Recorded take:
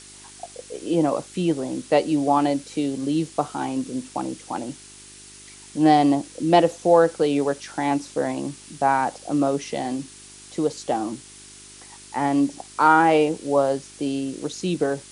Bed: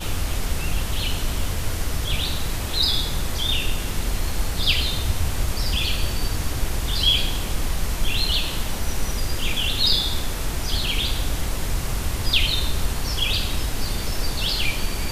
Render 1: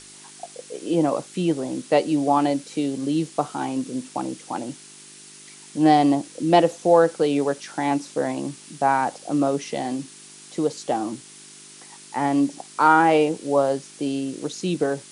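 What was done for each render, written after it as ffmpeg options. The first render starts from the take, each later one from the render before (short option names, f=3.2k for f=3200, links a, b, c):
-af "bandreject=f=50:t=h:w=4,bandreject=f=100:t=h:w=4"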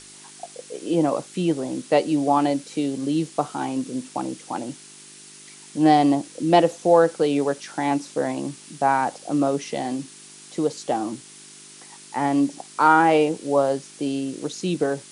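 -af anull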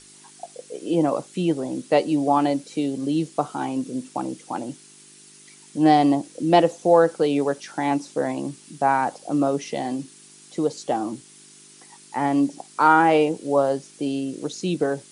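-af "afftdn=nr=6:nf=-45"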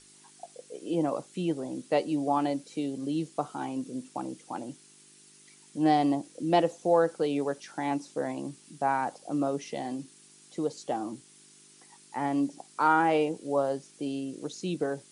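-af "volume=-7.5dB"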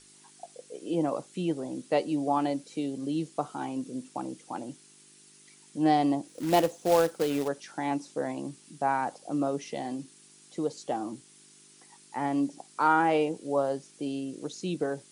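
-filter_complex "[0:a]asplit=3[a][b][c];[a]afade=t=out:st=6.27:d=0.02[d];[b]acrusher=bits=3:mode=log:mix=0:aa=0.000001,afade=t=in:st=6.27:d=0.02,afade=t=out:st=7.47:d=0.02[e];[c]afade=t=in:st=7.47:d=0.02[f];[d][e][f]amix=inputs=3:normalize=0"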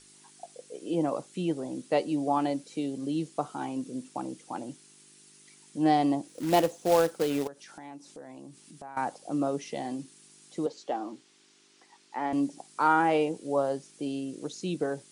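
-filter_complex "[0:a]asettb=1/sr,asplit=3[a][b][c];[a]atrim=end=7.474[d];[b]atrim=start=7.47:end=8.97,asetpts=PTS-STARTPTS,afade=t=in:d=0.004:c=qsin,afade=t=out:st=1.496:d=0.004:c=qsin,acompressor=threshold=-46dB:ratio=3:attack=3.2:release=140:knee=1:detection=peak[e];[c]atrim=start=8.966[f];[d][e]acrossfade=d=0.004:c1=hsin:c2=qsin[g];[g][f]acrossfade=d=0.004:c1=qsin:c2=hsin,asettb=1/sr,asplit=3[h][i][j];[h]atrim=end=10.664[k];[i]atrim=start=10.66:end=12.33,asetpts=PTS-STARTPTS,afade=t=in:d=0.004:c=qsin,afade=t=out:st=1.666:d=0.004:c=qsin,highpass=290,lowpass=5k[l];[j]atrim=start=12.326[m];[k][l]acrossfade=d=0.004:c1=hsin:c2=qsin[n];[n][m]acrossfade=d=0.004:c1=qsin:c2=hsin"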